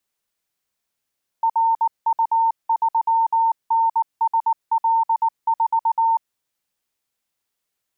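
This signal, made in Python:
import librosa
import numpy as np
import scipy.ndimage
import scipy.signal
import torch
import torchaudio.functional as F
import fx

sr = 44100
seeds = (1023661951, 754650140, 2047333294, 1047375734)

y = fx.morse(sr, text='RU3NSL4', wpm=19, hz=908.0, level_db=-14.5)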